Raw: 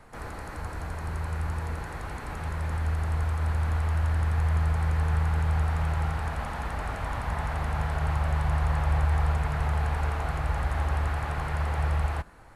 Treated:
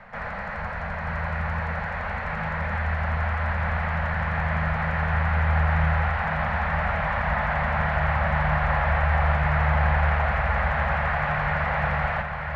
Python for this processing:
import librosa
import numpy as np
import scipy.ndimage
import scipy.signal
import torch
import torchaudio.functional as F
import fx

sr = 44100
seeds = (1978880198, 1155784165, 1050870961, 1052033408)

y = fx.curve_eq(x, sr, hz=(120.0, 200.0, 320.0, 570.0, 840.0, 1200.0, 1900.0, 5900.0, 9800.0), db=(0, 10, -17, 10, 7, 7, 13, -8, -25))
y = y + 10.0 ** (-5.5 / 20.0) * np.pad(y, (int(936 * sr / 1000.0), 0))[:len(y)]